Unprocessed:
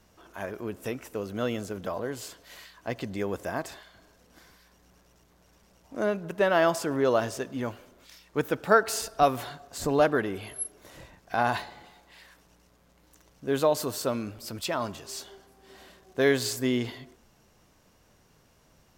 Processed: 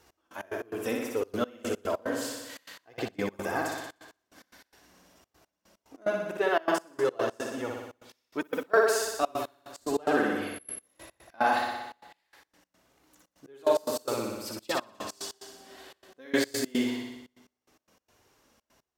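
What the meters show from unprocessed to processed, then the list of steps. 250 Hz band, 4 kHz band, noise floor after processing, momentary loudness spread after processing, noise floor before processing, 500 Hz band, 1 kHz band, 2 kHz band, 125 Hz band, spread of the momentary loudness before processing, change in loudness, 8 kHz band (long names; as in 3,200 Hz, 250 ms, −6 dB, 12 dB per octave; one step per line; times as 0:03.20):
−1.5 dB, −1.5 dB, −85 dBFS, 17 LU, −62 dBFS, −2.0 dB, −2.0 dB, −0.5 dB, −9.5 dB, 16 LU, −2.0 dB, −1.5 dB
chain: high-pass filter 190 Hz 6 dB per octave
flanger 1.7 Hz, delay 2.2 ms, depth 1.8 ms, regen −1%
flutter between parallel walls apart 10.4 metres, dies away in 1.1 s
gate pattern "x..x.x.xxxxx." 146 BPM −24 dB
speech leveller within 5 dB 2 s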